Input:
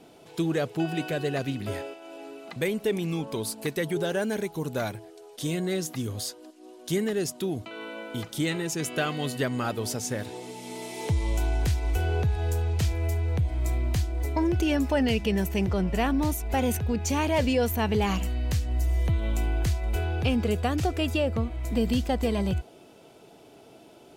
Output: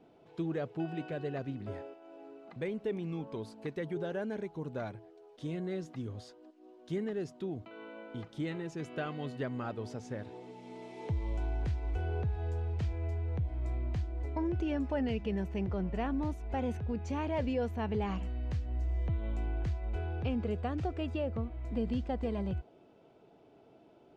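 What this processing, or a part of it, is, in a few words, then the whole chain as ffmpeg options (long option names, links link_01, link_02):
through cloth: -filter_complex "[0:a]lowpass=6500,highshelf=frequency=3200:gain=-16.5,asettb=1/sr,asplit=3[link_01][link_02][link_03];[link_01]atrim=end=1.404[link_04];[link_02]atrim=start=1.4:end=2.54,asetpts=PTS-STARTPTS,afade=type=in:duration=0.004:curve=qsin,afade=type=out:start_time=1.136:duration=0.004:curve=qsin,equalizer=frequency=2800:width=1.1:gain=-3.5[link_05];[link_03]atrim=start=2.536[link_06];[link_04][link_05]acrossfade=duration=0.004:curve1=hsin:curve2=qsin[link_07];[link_07][link_06]acrossfade=duration=0.004:curve1=qsin:curve2=hsin,volume=-8dB"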